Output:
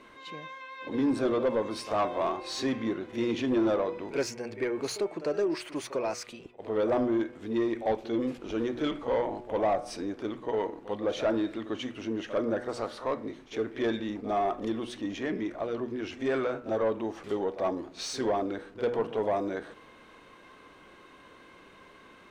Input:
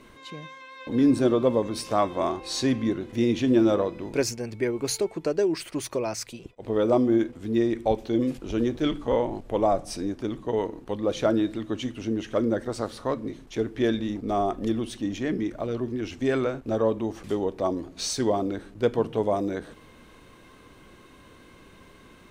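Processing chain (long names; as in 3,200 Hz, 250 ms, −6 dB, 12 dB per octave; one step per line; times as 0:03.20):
hum removal 121.3 Hz, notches 22
echo ahead of the sound 48 ms −16 dB
mid-hump overdrive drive 17 dB, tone 2,000 Hz, clips at −9 dBFS
level −8 dB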